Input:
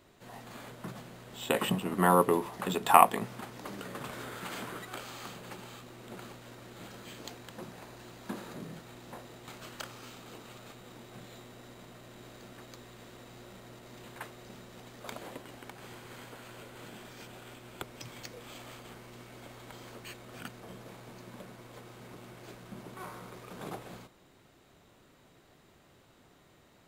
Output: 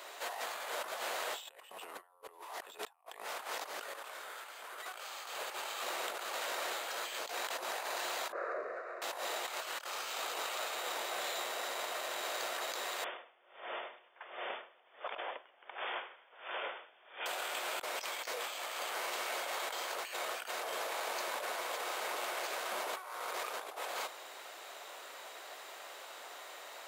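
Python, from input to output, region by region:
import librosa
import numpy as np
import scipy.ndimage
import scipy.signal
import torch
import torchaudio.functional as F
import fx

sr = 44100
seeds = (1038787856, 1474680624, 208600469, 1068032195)

y = fx.chain(x, sr, fx.lowpass(hz=1300.0, slope=12),
    fx.fixed_phaser(hz=870.0, stages=6), at=(8.32, 9.02))
y = fx.chain(y, sr, fx.brickwall_lowpass(high_hz=3600.0),
    fx.tremolo_db(hz=1.4, depth_db=29), at=(13.04, 17.26))
y = scipy.signal.sosfilt(scipy.signal.butter(4, 560.0, 'highpass', fs=sr, output='sos'), y)
y = fx.over_compress(y, sr, threshold_db=-54.0, ratio=-1.0)
y = F.gain(torch.from_numpy(y), 7.0).numpy()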